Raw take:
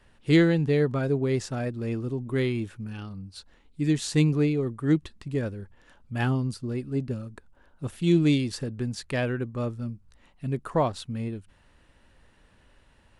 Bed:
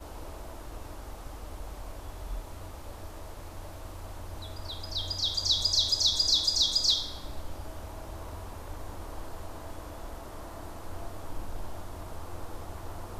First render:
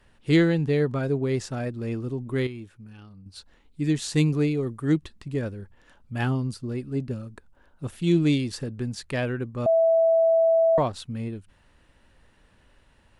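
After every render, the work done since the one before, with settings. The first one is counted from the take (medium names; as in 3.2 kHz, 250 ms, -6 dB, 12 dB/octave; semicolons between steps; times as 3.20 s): 2.47–3.26 s: gain -9 dB; 4.15–4.96 s: treble shelf 6 kHz +6.5 dB; 9.66–10.78 s: bleep 657 Hz -16 dBFS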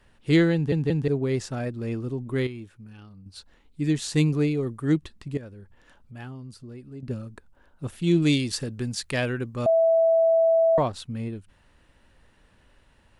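0.54 s: stutter in place 0.18 s, 3 plays; 5.37–7.03 s: compression 2:1, threshold -47 dBFS; 8.22–9.70 s: treble shelf 2.3 kHz +8 dB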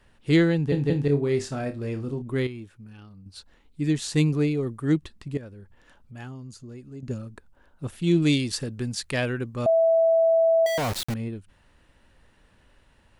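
0.69–2.22 s: flutter echo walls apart 4.8 m, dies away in 0.22 s; 6.17–7.18 s: peaking EQ 6.7 kHz +14 dB 0.23 oct; 10.66–11.14 s: companded quantiser 2-bit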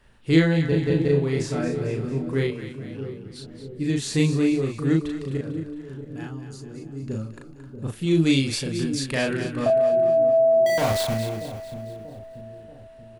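doubling 37 ms -2 dB; two-band feedback delay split 610 Hz, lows 635 ms, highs 224 ms, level -10 dB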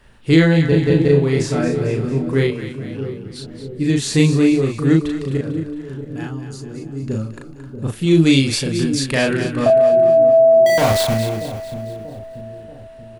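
trim +7 dB; peak limiter -3 dBFS, peak gain reduction 3 dB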